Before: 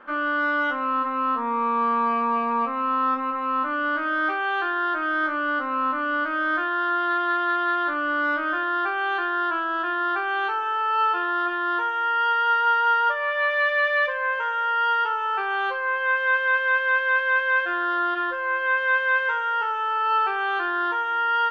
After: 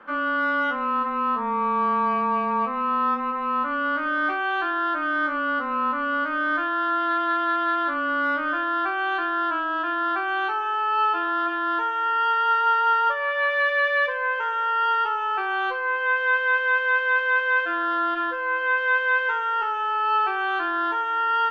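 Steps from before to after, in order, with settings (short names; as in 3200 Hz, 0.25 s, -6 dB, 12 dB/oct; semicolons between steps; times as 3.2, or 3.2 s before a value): frequency shift -17 Hz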